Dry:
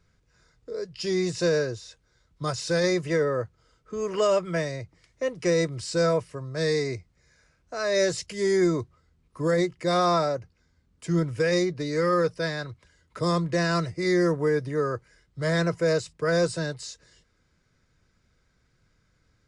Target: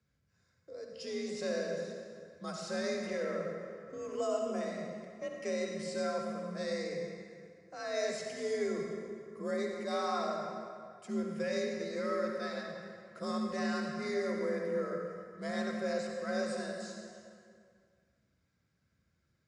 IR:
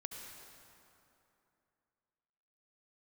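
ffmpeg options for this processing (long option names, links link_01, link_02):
-filter_complex "[0:a]asettb=1/sr,asplit=3[link_01][link_02][link_03];[link_01]atrim=end=4.124[link_04];[link_02]atrim=start=4.12:end=4.61,asetpts=PTS-STARTPTS,afade=type=in:duration=0.004:curve=qsin,afade=type=out:start_time=0.486:duration=0.004:curve=qsin,equalizer=frequency=250:width_type=o:width=1:gain=7,equalizer=frequency=2000:width_type=o:width=1:gain=-9,equalizer=frequency=4000:width_type=o:width=1:gain=-3,equalizer=frequency=8000:width_type=o:width=1:gain=4[link_05];[link_03]atrim=start=4.606[link_06];[link_04][link_05]acrossfade=duration=0.004:curve1=hsin:curve2=qsin[link_07];[link_07][link_06]acrossfade=duration=0.004:curve1=qsin:curve2=hsin,afreqshift=48[link_08];[1:a]atrim=start_sample=2205,asetrate=57330,aresample=44100[link_09];[link_08][link_09]afir=irnorm=-1:irlink=0,volume=-6dB"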